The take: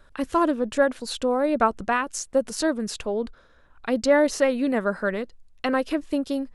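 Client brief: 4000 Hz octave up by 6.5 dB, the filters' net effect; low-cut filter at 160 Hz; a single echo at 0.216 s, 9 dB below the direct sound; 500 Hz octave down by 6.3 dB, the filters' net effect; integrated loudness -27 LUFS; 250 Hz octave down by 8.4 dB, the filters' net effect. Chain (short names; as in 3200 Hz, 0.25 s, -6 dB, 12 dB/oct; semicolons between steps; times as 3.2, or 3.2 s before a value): HPF 160 Hz; bell 250 Hz -7.5 dB; bell 500 Hz -6 dB; bell 4000 Hz +8 dB; echo 0.216 s -9 dB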